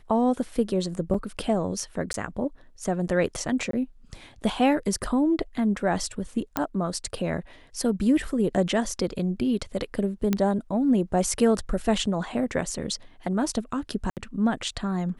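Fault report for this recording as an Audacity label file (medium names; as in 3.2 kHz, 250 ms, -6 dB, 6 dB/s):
1.140000	1.140000	dropout 4 ms
2.130000	2.140000	dropout 12 ms
3.710000	3.730000	dropout 23 ms
6.570000	6.570000	pop -9 dBFS
10.330000	10.330000	pop -10 dBFS
14.100000	14.170000	dropout 68 ms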